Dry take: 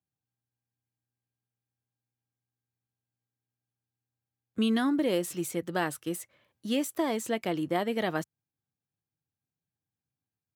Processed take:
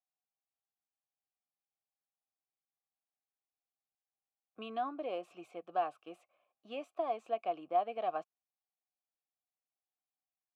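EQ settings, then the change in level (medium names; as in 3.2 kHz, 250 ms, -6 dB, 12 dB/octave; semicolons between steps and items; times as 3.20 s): vowel filter a; bass shelf 140 Hz -9 dB; treble shelf 4.8 kHz -10 dB; +4.0 dB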